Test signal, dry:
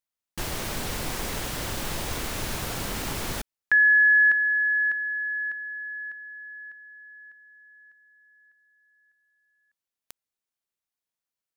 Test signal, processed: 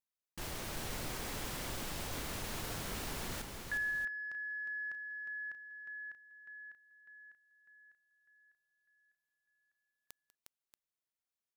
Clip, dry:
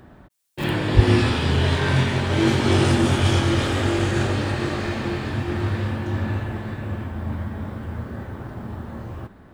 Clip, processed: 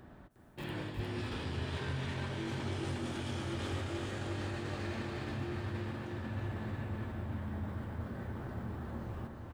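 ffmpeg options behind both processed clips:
ffmpeg -i in.wav -af "areverse,acompressor=threshold=-27dB:ratio=6:attack=0.63:release=261:knee=6:detection=peak,areverse,aeval=exprs='0.211*(cos(1*acos(clip(val(0)/0.211,-1,1)))-cos(1*PI/2))+0.00376*(cos(5*acos(clip(val(0)/0.211,-1,1)))-cos(5*PI/2))':channel_layout=same,aecho=1:1:195|358|633:0.126|0.531|0.237,volume=-8dB" out.wav

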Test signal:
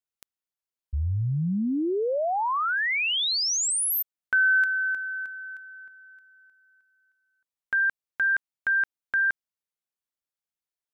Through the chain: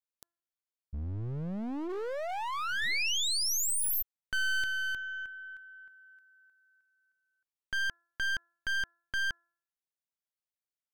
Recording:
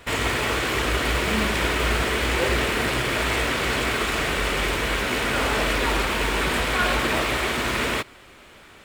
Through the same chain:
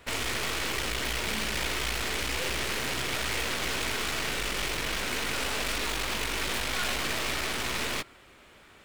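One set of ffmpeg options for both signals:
ffmpeg -i in.wav -filter_complex "[0:a]bandreject=frequency=341.6:width_type=h:width=4,bandreject=frequency=683.2:width_type=h:width=4,bandreject=frequency=1024.8:width_type=h:width=4,bandreject=frequency=1366.4:width_type=h:width=4,bandreject=frequency=1708:width_type=h:width=4,acrossover=split=2100[link_01][link_02];[link_01]asoftclip=type=hard:threshold=-28dB[link_03];[link_03][link_02]amix=inputs=2:normalize=0,aeval=exprs='0.178*(cos(1*acos(clip(val(0)/0.178,-1,1)))-cos(1*PI/2))+0.0794*(cos(6*acos(clip(val(0)/0.178,-1,1)))-cos(6*PI/2))+0.002*(cos(7*acos(clip(val(0)/0.178,-1,1)))-cos(7*PI/2))+0.0398*(cos(8*acos(clip(val(0)/0.178,-1,1)))-cos(8*PI/2))':channel_layout=same,volume=-6dB" out.wav

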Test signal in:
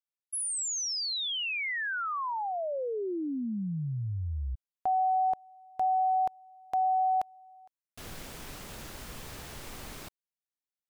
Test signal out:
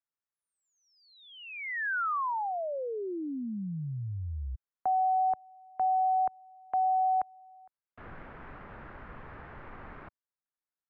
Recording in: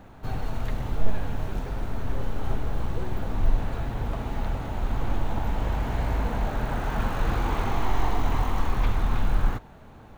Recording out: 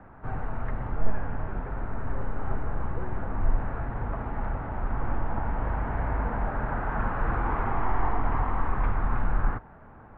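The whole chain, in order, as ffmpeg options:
ffmpeg -i in.wav -filter_complex "[0:a]lowpass=frequency=1700:width=0.5412,lowpass=frequency=1700:width=1.3066,acrossover=split=120|940[link_01][link_02][link_03];[link_03]acontrast=69[link_04];[link_01][link_02][link_04]amix=inputs=3:normalize=0,volume=-2.5dB" out.wav

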